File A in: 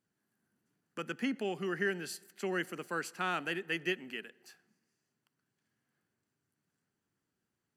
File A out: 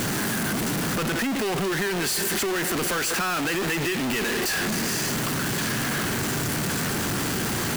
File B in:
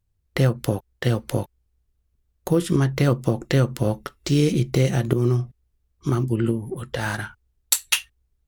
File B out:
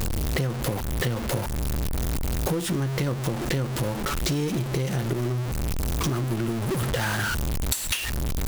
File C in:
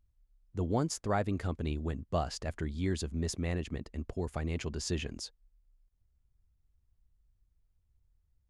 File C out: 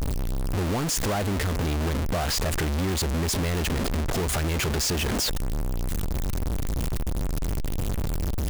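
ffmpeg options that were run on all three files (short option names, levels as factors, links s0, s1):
-af "aeval=exprs='val(0)+0.5*0.133*sgn(val(0))':c=same,acompressor=threshold=0.0708:ratio=6,volume=0.891"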